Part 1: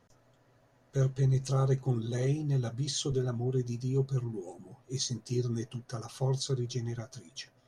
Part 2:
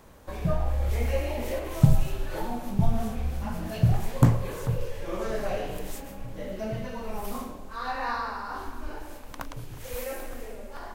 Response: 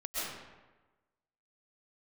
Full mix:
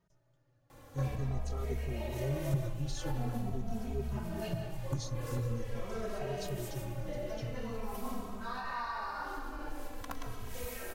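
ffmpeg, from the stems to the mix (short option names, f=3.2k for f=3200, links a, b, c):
-filter_complex "[0:a]lowshelf=f=190:g=8,volume=-9dB[a];[1:a]acompressor=threshold=-32dB:ratio=12,adelay=700,volume=-2dB,asplit=2[b][c];[c]volume=-6.5dB[d];[2:a]atrim=start_sample=2205[e];[d][e]afir=irnorm=-1:irlink=0[f];[a][b][f]amix=inputs=3:normalize=0,asplit=2[g][h];[h]adelay=2.8,afreqshift=-0.45[i];[g][i]amix=inputs=2:normalize=1"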